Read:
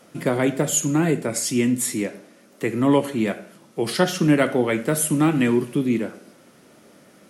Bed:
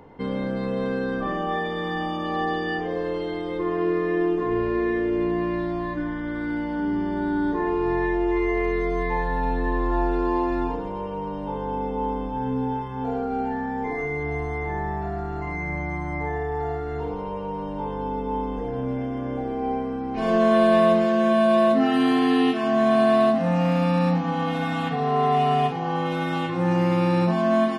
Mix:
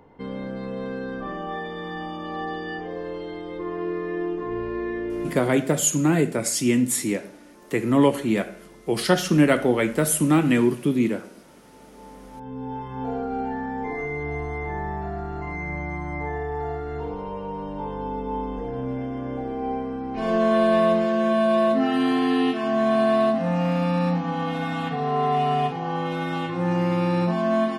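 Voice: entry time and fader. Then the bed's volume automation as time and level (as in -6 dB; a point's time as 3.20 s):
5.10 s, 0.0 dB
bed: 5.23 s -5 dB
5.61 s -27.5 dB
11.64 s -27.5 dB
12.91 s -1.5 dB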